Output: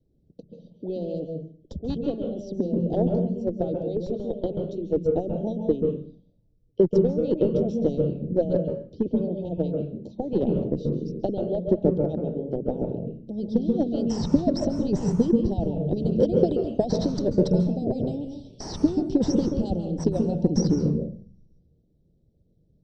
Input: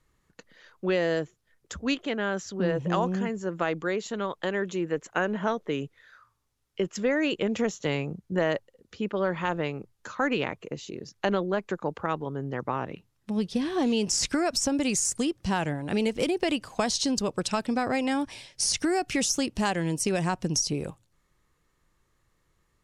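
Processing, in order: elliptic band-stop 600–3400 Hz, stop band 50 dB; harmonic-percussive split harmonic -15 dB; in parallel at -5.5 dB: Schmitt trigger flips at -28.5 dBFS; on the sum: tape spacing loss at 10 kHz 36 dB; reverb RT60 0.45 s, pre-delay 0.132 s, DRR 3 dB

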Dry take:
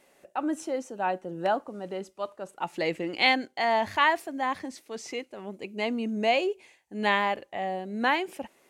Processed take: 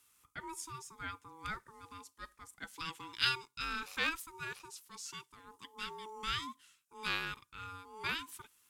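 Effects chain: ring modulator 650 Hz; pre-emphasis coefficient 0.9; added harmonics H 7 -30 dB, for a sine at -17 dBFS; gain +4.5 dB

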